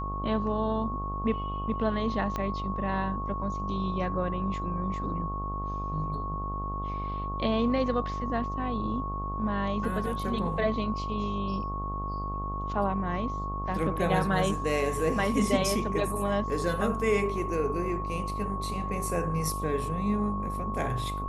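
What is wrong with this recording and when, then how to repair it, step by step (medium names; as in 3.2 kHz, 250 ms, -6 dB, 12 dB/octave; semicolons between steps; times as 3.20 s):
buzz 50 Hz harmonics 26 -35 dBFS
whine 1.1 kHz -34 dBFS
2.36 s: pop -18 dBFS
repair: de-click; de-hum 50 Hz, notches 26; band-stop 1.1 kHz, Q 30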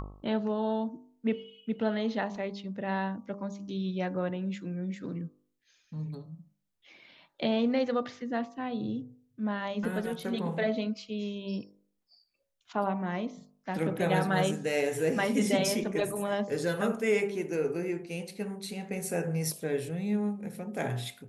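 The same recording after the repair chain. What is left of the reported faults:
2.36 s: pop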